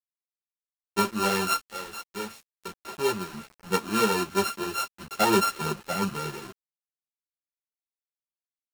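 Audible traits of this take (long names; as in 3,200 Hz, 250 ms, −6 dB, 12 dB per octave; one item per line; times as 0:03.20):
a buzz of ramps at a fixed pitch in blocks of 32 samples
sample-and-hold tremolo 1.2 Hz, depth 80%
a quantiser's noise floor 8 bits, dither none
a shimmering, thickened sound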